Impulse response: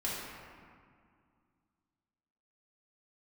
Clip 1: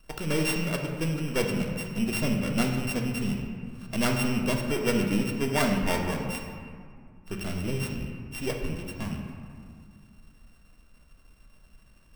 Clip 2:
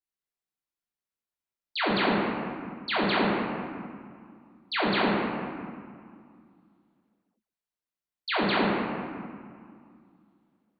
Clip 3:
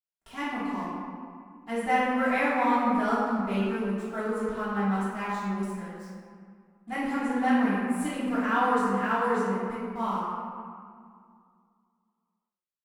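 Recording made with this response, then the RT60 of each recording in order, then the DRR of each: 2; 2.1, 2.1, 2.1 seconds; 1.5, −7.5, −13.0 decibels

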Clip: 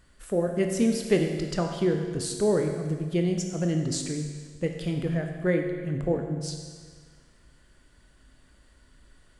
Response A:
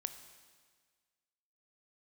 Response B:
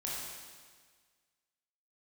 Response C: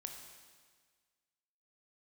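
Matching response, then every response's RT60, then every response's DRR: C; 1.6, 1.6, 1.6 seconds; 9.0, −6.0, 3.0 decibels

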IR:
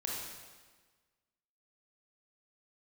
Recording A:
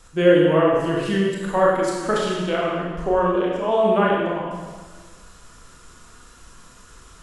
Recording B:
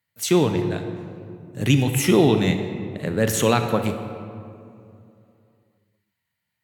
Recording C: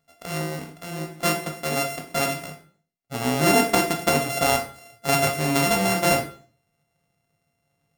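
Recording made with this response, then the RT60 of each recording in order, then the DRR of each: A; 1.4, 2.6, 0.45 seconds; −3.5, 6.5, 3.0 decibels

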